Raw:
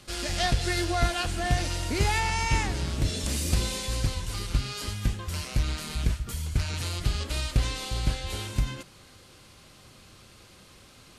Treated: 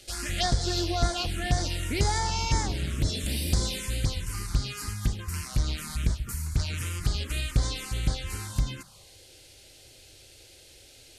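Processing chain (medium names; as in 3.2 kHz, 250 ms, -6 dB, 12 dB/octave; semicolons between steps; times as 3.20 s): treble shelf 2.2 kHz +4.5 dB; touch-sensitive phaser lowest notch 170 Hz, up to 2.7 kHz, full sweep at -20.5 dBFS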